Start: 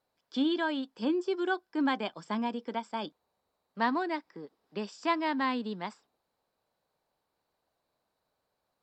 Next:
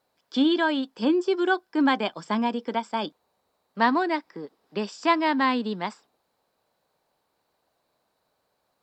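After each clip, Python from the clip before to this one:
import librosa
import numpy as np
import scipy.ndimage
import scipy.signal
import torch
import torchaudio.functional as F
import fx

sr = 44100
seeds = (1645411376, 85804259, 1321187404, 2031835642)

y = fx.low_shelf(x, sr, hz=80.0, db=-7.0)
y = y * 10.0 ** (7.5 / 20.0)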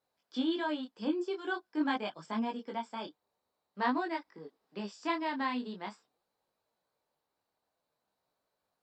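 y = fx.detune_double(x, sr, cents=16)
y = y * 10.0 ** (-7.0 / 20.0)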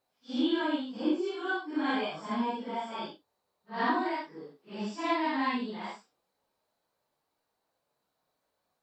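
y = fx.phase_scramble(x, sr, seeds[0], window_ms=200)
y = y * 10.0 ** (3.5 / 20.0)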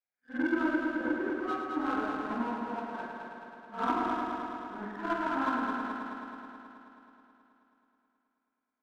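y = fx.freq_compress(x, sr, knee_hz=1200.0, ratio=4.0)
y = fx.power_curve(y, sr, exponent=1.4)
y = fx.echo_heads(y, sr, ms=107, heads='first and second', feedback_pct=71, wet_db=-7)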